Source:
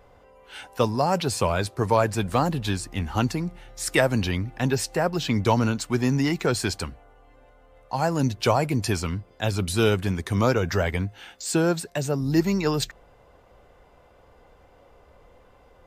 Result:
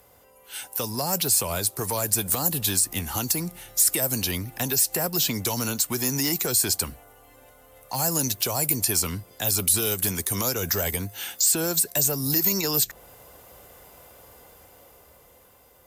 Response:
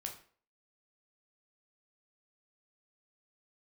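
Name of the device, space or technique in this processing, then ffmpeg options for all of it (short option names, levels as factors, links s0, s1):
FM broadcast chain: -filter_complex "[0:a]highpass=60,dynaudnorm=f=390:g=9:m=3.76,acrossover=split=360|1100|3700[s0][s1][s2][s3];[s0]acompressor=threshold=0.0562:ratio=4[s4];[s1]acompressor=threshold=0.0631:ratio=4[s5];[s2]acompressor=threshold=0.02:ratio=4[s6];[s3]acompressor=threshold=0.0282:ratio=4[s7];[s4][s5][s6][s7]amix=inputs=4:normalize=0,aemphasis=mode=production:type=50fm,alimiter=limit=0.178:level=0:latency=1:release=104,asoftclip=type=hard:threshold=0.133,lowpass=f=15000:w=0.5412,lowpass=f=15000:w=1.3066,aemphasis=mode=production:type=50fm,volume=0.708"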